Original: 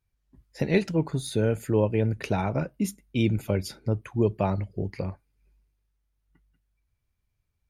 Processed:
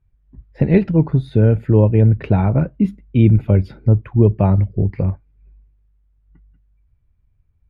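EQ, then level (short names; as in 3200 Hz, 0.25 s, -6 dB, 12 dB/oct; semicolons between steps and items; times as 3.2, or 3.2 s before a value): air absorption 460 m; low shelf 190 Hz +12 dB; +6.0 dB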